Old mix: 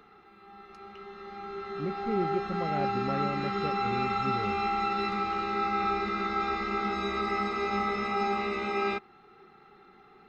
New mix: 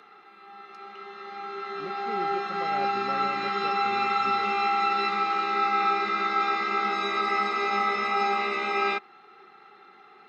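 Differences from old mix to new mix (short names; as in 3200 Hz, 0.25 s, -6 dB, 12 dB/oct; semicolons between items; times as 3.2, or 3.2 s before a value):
background +5.0 dB; master: add weighting filter A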